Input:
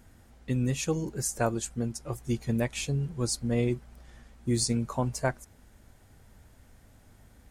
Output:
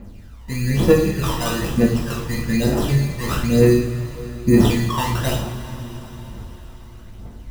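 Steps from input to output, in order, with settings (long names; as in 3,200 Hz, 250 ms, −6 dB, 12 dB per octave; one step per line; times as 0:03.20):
peak hold with a decay on every bin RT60 0.31 s
in parallel at +1 dB: brickwall limiter −22.5 dBFS, peak gain reduction 8.5 dB
on the sum: decimation without filtering 20×
phase shifter 1.1 Hz, delay 1.1 ms, feedback 78%
coupled-rooms reverb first 0.47 s, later 5 s, from −18 dB, DRR −3 dB
level −4.5 dB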